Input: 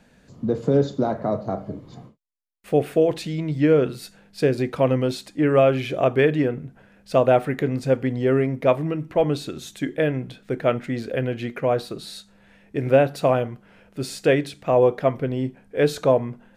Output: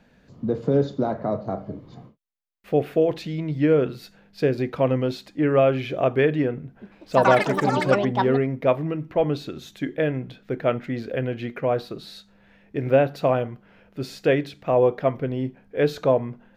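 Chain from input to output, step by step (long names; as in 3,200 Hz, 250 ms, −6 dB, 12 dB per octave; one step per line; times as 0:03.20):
parametric band 8,900 Hz −13 dB 0.87 octaves
0:06.62–0:08.96: delay with pitch and tempo change per echo 196 ms, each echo +7 semitones, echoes 3
level −1.5 dB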